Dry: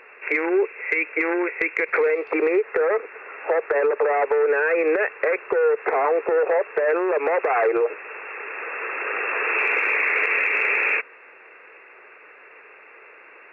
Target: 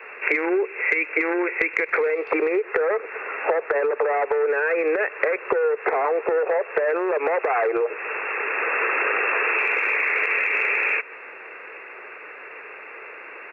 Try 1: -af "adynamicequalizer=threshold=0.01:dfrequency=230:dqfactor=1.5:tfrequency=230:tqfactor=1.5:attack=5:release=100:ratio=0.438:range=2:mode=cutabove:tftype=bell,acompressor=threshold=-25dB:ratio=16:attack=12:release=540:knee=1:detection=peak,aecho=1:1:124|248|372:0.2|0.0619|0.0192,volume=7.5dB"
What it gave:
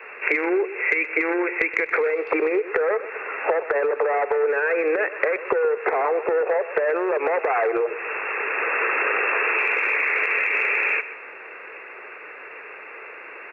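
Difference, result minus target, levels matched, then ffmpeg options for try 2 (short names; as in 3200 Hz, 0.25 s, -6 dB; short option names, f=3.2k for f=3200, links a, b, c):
echo-to-direct +10 dB
-af "adynamicequalizer=threshold=0.01:dfrequency=230:dqfactor=1.5:tfrequency=230:tqfactor=1.5:attack=5:release=100:ratio=0.438:range=2:mode=cutabove:tftype=bell,acompressor=threshold=-25dB:ratio=16:attack=12:release=540:knee=1:detection=peak,aecho=1:1:124|248:0.0631|0.0196,volume=7.5dB"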